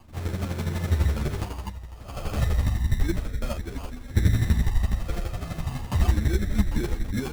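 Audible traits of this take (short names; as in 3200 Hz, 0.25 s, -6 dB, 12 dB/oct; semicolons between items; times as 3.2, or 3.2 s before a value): phasing stages 8, 0.33 Hz, lowest notch 310–1100 Hz; chopped level 12 Hz, depth 60%, duty 20%; aliases and images of a low sample rate 1900 Hz, jitter 0%; a shimmering, thickened sound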